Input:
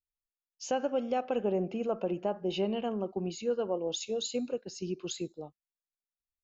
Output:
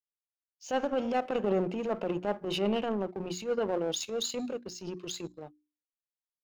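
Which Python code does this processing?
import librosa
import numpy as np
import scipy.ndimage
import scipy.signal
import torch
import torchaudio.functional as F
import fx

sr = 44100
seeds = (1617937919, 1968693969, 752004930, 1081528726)

y = fx.power_curve(x, sr, exponent=1.4)
y = fx.transient(y, sr, attack_db=-9, sustain_db=5)
y = fx.hum_notches(y, sr, base_hz=60, count=6)
y = y * librosa.db_to_amplitude(6.0)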